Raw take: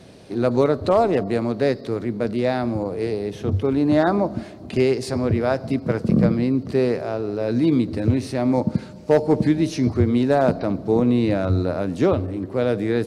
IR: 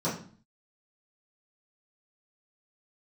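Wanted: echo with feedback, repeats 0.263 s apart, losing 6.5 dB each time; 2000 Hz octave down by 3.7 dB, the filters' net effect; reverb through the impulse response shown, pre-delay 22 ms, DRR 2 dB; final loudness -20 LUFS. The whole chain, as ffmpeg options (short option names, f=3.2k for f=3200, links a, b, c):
-filter_complex "[0:a]equalizer=f=2k:t=o:g=-5,aecho=1:1:263|526|789|1052|1315|1578:0.473|0.222|0.105|0.0491|0.0231|0.0109,asplit=2[a][b];[1:a]atrim=start_sample=2205,adelay=22[c];[b][c]afir=irnorm=-1:irlink=0,volume=-11dB[d];[a][d]amix=inputs=2:normalize=0,volume=-5.5dB"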